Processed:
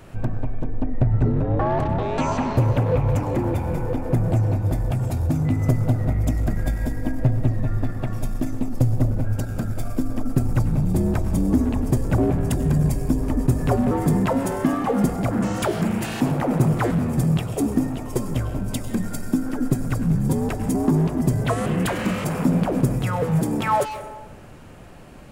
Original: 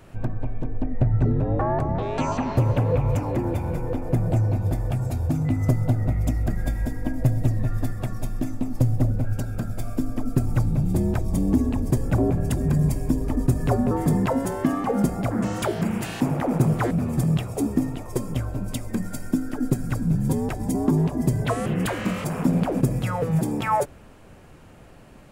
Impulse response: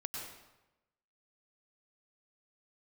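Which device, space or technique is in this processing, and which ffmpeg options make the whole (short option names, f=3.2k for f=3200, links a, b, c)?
saturated reverb return: -filter_complex "[0:a]asplit=2[a][b];[1:a]atrim=start_sample=2205[c];[b][c]afir=irnorm=-1:irlink=0,asoftclip=type=tanh:threshold=-28dB,volume=-1.5dB[d];[a][d]amix=inputs=2:normalize=0,asettb=1/sr,asplit=3[e][f][g];[e]atrim=end=7.194[h];[f]atrim=start=7.19:end=8.13,asetpts=PTS-STARTPTS,afade=t=in:d=0.004:c=qsin,afade=t=out:st=0.936:d=0.004:c=qsin,acrossover=split=3900[i][j];[j]acompressor=threshold=-57dB:ratio=4:attack=1:release=60[k];[i][k]amix=inputs=2:normalize=0[l];[g]atrim=start=8.126[m];[h][l]acrossfade=d=0.004:c1=hsin:c2=qsin[n];[n][m]acrossfade=d=0.004:c1=qsin:c2=hsin"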